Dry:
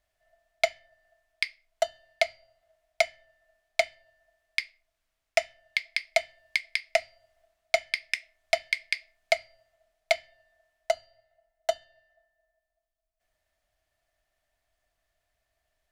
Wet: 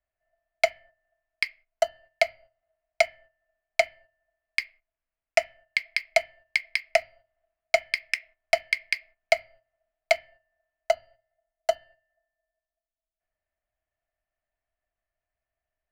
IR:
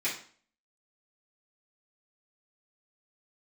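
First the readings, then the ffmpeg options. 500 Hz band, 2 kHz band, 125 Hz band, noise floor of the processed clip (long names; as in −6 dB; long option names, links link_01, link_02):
+3.0 dB, +2.5 dB, can't be measured, below −85 dBFS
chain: -filter_complex "[0:a]equalizer=frequency=7500:width=0.76:gain=-2,acrossover=split=180|1100|3500[link_01][link_02][link_03][link_04];[link_04]aeval=exprs='sgn(val(0))*max(abs(val(0))-0.00237,0)':channel_layout=same[link_05];[link_01][link_02][link_03][link_05]amix=inputs=4:normalize=0,agate=range=-12dB:threshold=-52dB:ratio=16:detection=peak,bandreject=frequency=3600:width=5.5,volume=3dB"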